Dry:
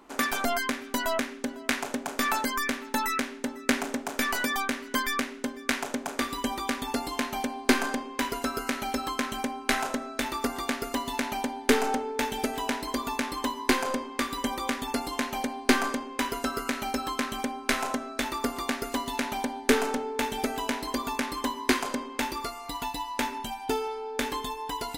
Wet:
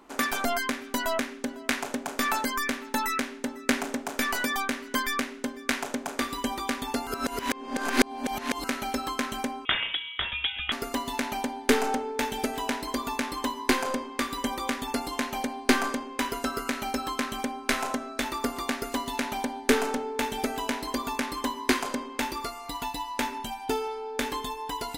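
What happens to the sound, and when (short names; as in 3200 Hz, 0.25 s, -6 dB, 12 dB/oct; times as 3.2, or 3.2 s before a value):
7.07–8.64 reverse
9.65–10.72 inverted band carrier 3600 Hz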